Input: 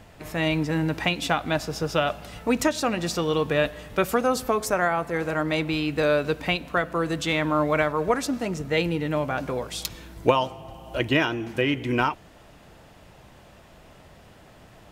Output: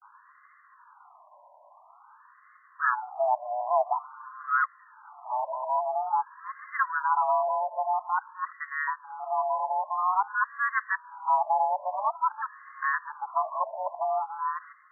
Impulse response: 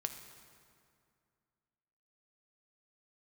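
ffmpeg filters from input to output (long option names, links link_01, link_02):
-af "areverse,highpass=frequency=200:width_type=q:width=0.5412,highpass=frequency=200:width_type=q:width=1.307,lowpass=frequency=2100:width_type=q:width=0.5176,lowpass=frequency=2100:width_type=q:width=0.7071,lowpass=frequency=2100:width_type=q:width=1.932,afreqshift=380,afftfilt=real='re*between(b*sr/1024,750*pow(1500/750,0.5+0.5*sin(2*PI*0.49*pts/sr))/1.41,750*pow(1500/750,0.5+0.5*sin(2*PI*0.49*pts/sr))*1.41)':imag='im*between(b*sr/1024,750*pow(1500/750,0.5+0.5*sin(2*PI*0.49*pts/sr))/1.41,750*pow(1500/750,0.5+0.5*sin(2*PI*0.49*pts/sr))*1.41)':win_size=1024:overlap=0.75"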